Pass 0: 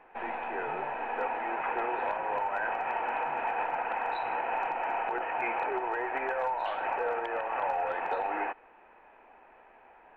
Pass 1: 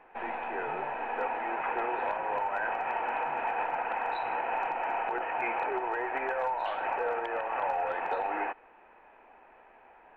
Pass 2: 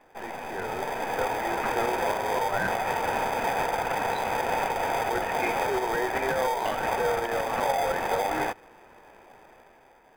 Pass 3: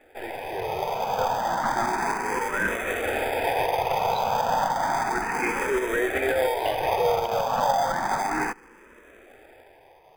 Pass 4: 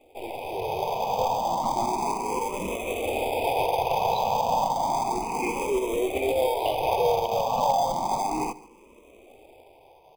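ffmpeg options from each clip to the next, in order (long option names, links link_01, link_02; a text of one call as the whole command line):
ffmpeg -i in.wav -af anull out.wav
ffmpeg -i in.wav -filter_complex "[0:a]dynaudnorm=framelen=160:gausssize=9:maxgain=6dB,asplit=2[link_01][link_02];[link_02]acrusher=samples=32:mix=1:aa=0.000001,volume=-5dB[link_03];[link_01][link_03]amix=inputs=2:normalize=0,volume=-2.5dB" out.wav
ffmpeg -i in.wav -filter_complex "[0:a]asplit=2[link_01][link_02];[link_02]afreqshift=0.32[link_03];[link_01][link_03]amix=inputs=2:normalize=1,volume=5dB" out.wav
ffmpeg -i in.wav -af "volume=14dB,asoftclip=hard,volume=-14dB,asuperstop=centerf=1600:order=8:qfactor=1.3,aecho=1:1:141:0.1" out.wav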